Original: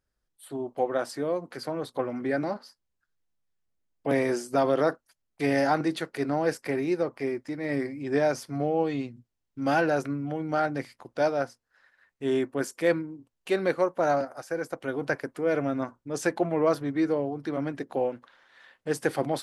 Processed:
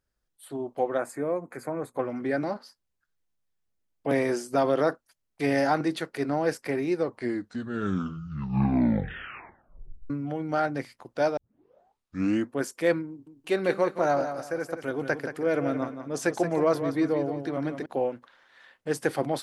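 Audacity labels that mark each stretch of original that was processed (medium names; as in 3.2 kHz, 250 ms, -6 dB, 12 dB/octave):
0.980000	1.980000	time-frequency box 2.6–6.3 kHz -15 dB
6.920000	6.920000	tape stop 3.18 s
11.370000	11.370000	tape start 1.19 s
13.090000	17.860000	feedback delay 175 ms, feedback 28%, level -9 dB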